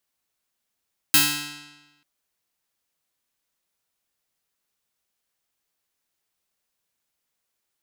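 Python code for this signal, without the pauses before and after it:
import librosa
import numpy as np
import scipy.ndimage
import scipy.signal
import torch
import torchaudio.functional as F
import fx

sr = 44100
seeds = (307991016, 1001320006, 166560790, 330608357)

y = fx.pluck(sr, length_s=0.89, note=50, decay_s=1.14, pick=0.25, brightness='bright')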